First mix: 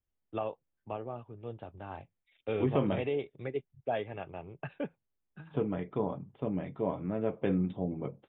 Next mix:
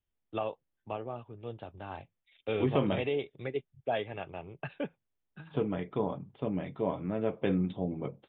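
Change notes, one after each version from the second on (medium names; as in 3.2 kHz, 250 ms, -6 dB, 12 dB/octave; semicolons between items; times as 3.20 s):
master: remove distance through air 300 m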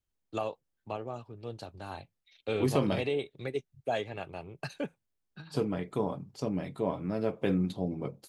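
master: remove Chebyshev low-pass 3.6 kHz, order 8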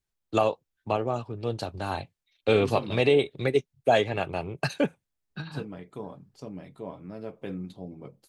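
first voice +10.5 dB; second voice -7.5 dB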